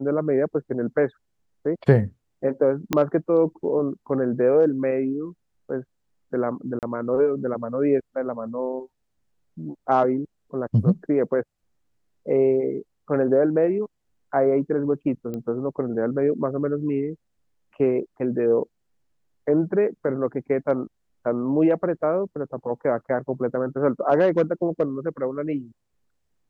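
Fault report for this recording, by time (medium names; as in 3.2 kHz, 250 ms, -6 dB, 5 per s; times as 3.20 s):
2.93 s: pop -7 dBFS
6.79–6.83 s: dropout 38 ms
15.34 s: pop -20 dBFS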